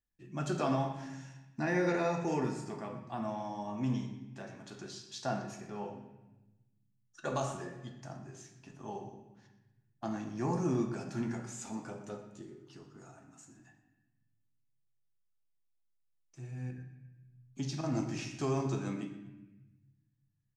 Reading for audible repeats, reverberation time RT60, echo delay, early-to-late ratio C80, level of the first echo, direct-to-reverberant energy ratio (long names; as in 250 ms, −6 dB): 1, 1.0 s, 122 ms, 9.5 dB, −17.0 dB, 4.0 dB